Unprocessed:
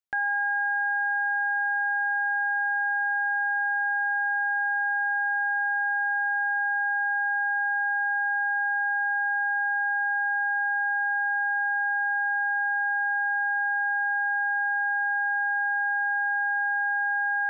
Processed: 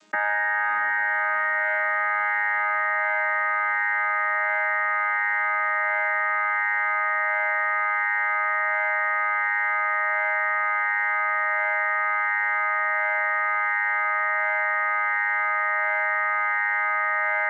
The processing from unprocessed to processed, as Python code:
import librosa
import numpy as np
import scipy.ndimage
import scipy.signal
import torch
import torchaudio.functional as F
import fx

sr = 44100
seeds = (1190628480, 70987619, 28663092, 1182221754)

p1 = fx.chord_vocoder(x, sr, chord='bare fifth', root=56)
p2 = p1 + fx.echo_diffused(p1, sr, ms=707, feedback_pct=67, wet_db=-4.0, dry=0)
p3 = fx.env_flatten(p2, sr, amount_pct=100)
y = p3 * librosa.db_to_amplitude(1.5)